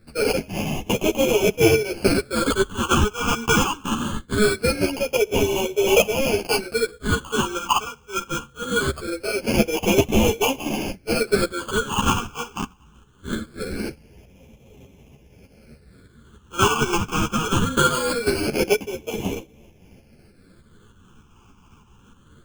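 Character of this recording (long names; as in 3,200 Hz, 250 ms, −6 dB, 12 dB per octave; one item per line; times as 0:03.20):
aliases and images of a low sample rate 1,900 Hz, jitter 0%
phaser sweep stages 8, 0.22 Hz, lowest notch 570–1,400 Hz
tremolo saw up 3.3 Hz, depth 55%
a shimmering, thickened sound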